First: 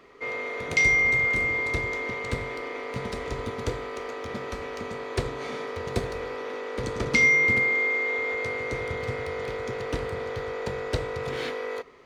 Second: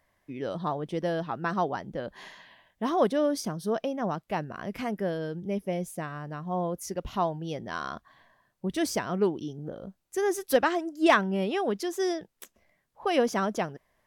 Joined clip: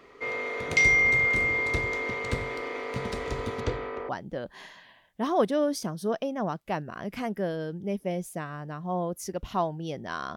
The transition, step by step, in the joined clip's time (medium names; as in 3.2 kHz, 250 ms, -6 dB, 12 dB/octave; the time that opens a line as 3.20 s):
first
3.60–4.09 s: low-pass 5.7 kHz -> 1.3 kHz
4.09 s: go over to second from 1.71 s